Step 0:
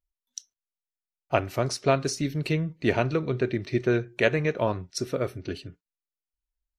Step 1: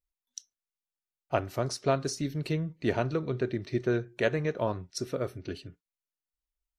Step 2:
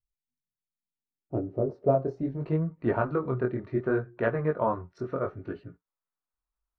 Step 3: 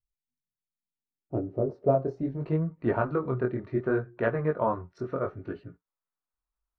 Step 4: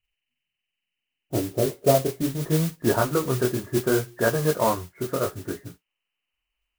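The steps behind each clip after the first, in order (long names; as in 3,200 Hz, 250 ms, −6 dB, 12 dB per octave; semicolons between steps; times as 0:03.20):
dynamic equaliser 2,400 Hz, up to −6 dB, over −47 dBFS, Q 2.4; level −4 dB
chorus effect 0.71 Hz, delay 17 ms, depth 7.4 ms; low-pass filter sweep 140 Hz → 1,200 Hz, 0:00.46–0:02.63; level +3.5 dB
no processing that can be heard
hearing-aid frequency compression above 1,600 Hz 4 to 1; noise that follows the level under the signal 12 dB; level +4.5 dB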